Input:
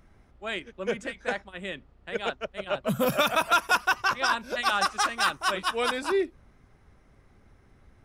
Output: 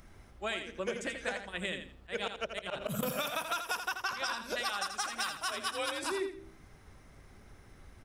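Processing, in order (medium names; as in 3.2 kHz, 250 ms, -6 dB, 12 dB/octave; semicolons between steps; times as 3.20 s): treble shelf 3.6 kHz +8.5 dB; de-hum 65.43 Hz, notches 8; 1.59–3.03 s: slow attack 118 ms; 5.49–6.04 s: frequency shift +44 Hz; compression 10:1, threshold -34 dBFS, peak gain reduction 18 dB; feedback delay 83 ms, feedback 25%, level -8 dB; trim +2 dB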